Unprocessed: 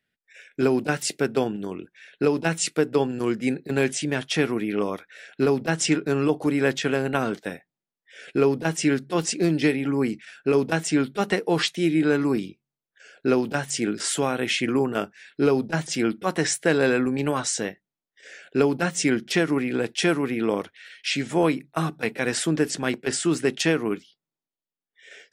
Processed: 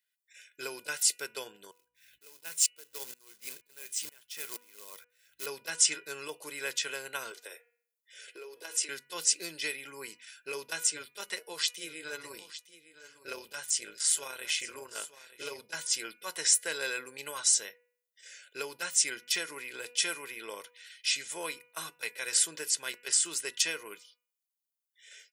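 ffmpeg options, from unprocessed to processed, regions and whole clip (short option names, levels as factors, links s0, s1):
-filter_complex "[0:a]asettb=1/sr,asplit=3[s0][s1][s2];[s0]atrim=end=1.714[s3];[s1]atrim=start=1.71:end=5.46,asetpts=PTS-STARTPTS,afade=t=in:d=0.004:c=qsin,afade=t=out:st=3.746:d=0.004:c=qsin,acrusher=bits=3:mode=log:mix=0:aa=0.000001,aeval=exprs='val(0)+0.00447*(sin(2*PI*60*n/s)+sin(2*PI*2*60*n/s)/2+sin(2*PI*3*60*n/s)/3+sin(2*PI*4*60*n/s)/4+sin(2*PI*5*60*n/s)/5)':c=same,aeval=exprs='val(0)*pow(10,-28*if(lt(mod(-2.1*n/s,1),2*abs(-2.1)/1000),1-mod(-2.1*n/s,1)/(2*abs(-2.1)/1000),(mod(-2.1*n/s,1)-2*abs(-2.1)/1000)/(1-2*abs(-2.1)/1000))/20)':c=same[s4];[s2]atrim=start=5.456[s5];[s3][s4]acrossfade=d=0.004:c1=hsin:c2=qsin[s6];[s6][s5]acrossfade=d=0.004:c1=qsin:c2=hsin,asettb=1/sr,asplit=3[s7][s8][s9];[s7]atrim=end=7.314[s10];[s8]atrim=start=7.31:end=8.89,asetpts=PTS-STARTPTS,afade=t=in:d=0.004:c=qsin,afade=t=out:st=1.576:d=0.004:c=qsin,lowshelf=f=270:t=q:w=3:g=-11,bandreject=f=236.2:t=h:w=4,bandreject=f=472.4:t=h:w=4,bandreject=f=708.6:t=h:w=4,bandreject=f=944.8:t=h:w=4,bandreject=f=1181:t=h:w=4,bandreject=f=1417.2:t=h:w=4,bandreject=f=1653.4:t=h:w=4,bandreject=f=1889.6:t=h:w=4,bandreject=f=2125.8:t=h:w=4,bandreject=f=2362:t=h:w=4,bandreject=f=2598.2:t=h:w=4,bandreject=f=2834.4:t=h:w=4,bandreject=f=3070.6:t=h:w=4,bandreject=f=3306.8:t=h:w=4,acompressor=threshold=0.0562:ratio=6:attack=3.2:release=140:knee=1:detection=peak[s11];[s9]atrim=start=8.886[s12];[s10][s11]acrossfade=d=0.004:c1=hsin:c2=qsin[s13];[s13][s12]acrossfade=d=0.004:c1=qsin:c2=hsin,asettb=1/sr,asplit=3[s14][s15][s16];[s14]atrim=end=10.904[s17];[s15]atrim=start=10.9:end=15.61,asetpts=PTS-STARTPTS,afade=t=in:d=0.004:c=qsin,afade=t=out:st=4.706:d=0.004:c=qsin,tremolo=f=160:d=0.621,aecho=1:1:909:0.178,atrim=end_sample=207711[s18];[s16]atrim=start=15.606[s19];[s17][s18]acrossfade=d=0.004:c1=hsin:c2=qsin[s20];[s20][s19]acrossfade=d=0.004:c1=qsin:c2=hsin,aderivative,aecho=1:1:2:0.58,bandreject=f=244:t=h:w=4,bandreject=f=488:t=h:w=4,bandreject=f=732:t=h:w=4,bandreject=f=976:t=h:w=4,bandreject=f=1220:t=h:w=4,bandreject=f=1464:t=h:w=4,bandreject=f=1708:t=h:w=4,bandreject=f=1952:t=h:w=4,bandreject=f=2196:t=h:w=4,bandreject=f=2440:t=h:w=4,bandreject=f=2684:t=h:w=4,bandreject=f=2928:t=h:w=4,volume=1.26"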